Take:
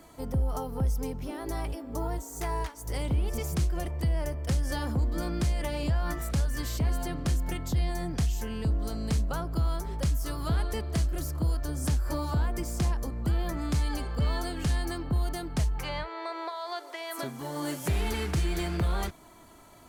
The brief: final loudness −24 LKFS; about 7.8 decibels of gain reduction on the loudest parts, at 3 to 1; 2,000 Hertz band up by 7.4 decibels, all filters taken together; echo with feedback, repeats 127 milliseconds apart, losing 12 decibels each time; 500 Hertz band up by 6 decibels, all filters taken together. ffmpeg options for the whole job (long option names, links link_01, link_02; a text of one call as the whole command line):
ffmpeg -i in.wav -af "equalizer=frequency=500:width_type=o:gain=7.5,equalizer=frequency=2000:width_type=o:gain=8.5,acompressor=threshold=-33dB:ratio=3,aecho=1:1:127|254|381:0.251|0.0628|0.0157,volume=11.5dB" out.wav